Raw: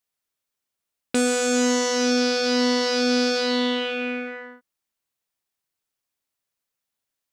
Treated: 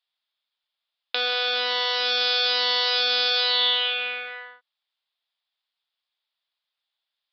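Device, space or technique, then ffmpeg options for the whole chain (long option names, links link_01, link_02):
musical greeting card: -af "aresample=11025,aresample=44100,highpass=frequency=630:width=0.5412,highpass=frequency=630:width=1.3066,equalizer=frequency=3500:width_type=o:width=0.49:gain=12"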